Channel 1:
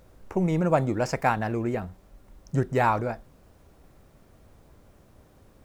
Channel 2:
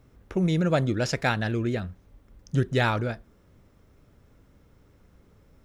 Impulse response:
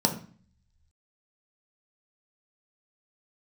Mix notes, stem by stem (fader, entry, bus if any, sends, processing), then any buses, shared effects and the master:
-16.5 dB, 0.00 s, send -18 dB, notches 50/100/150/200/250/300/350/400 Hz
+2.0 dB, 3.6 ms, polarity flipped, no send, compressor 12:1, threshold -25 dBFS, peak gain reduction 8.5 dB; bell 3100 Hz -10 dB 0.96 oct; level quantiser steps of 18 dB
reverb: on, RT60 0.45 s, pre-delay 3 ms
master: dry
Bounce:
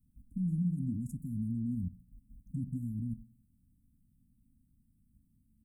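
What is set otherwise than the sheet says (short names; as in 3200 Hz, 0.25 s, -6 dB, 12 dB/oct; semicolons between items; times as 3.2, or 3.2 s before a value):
stem 2: polarity flipped; master: extra Chebyshev band-stop 260–8400 Hz, order 5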